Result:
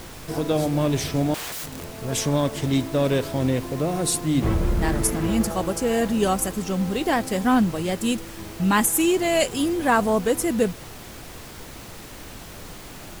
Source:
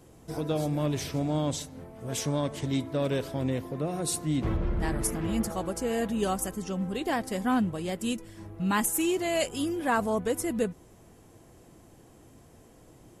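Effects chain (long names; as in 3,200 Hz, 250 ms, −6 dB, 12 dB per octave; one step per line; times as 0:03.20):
hum removal 50.15 Hz, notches 3
background noise pink −47 dBFS
0:01.34–0:01.86: wrap-around overflow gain 34.5 dB
level +7 dB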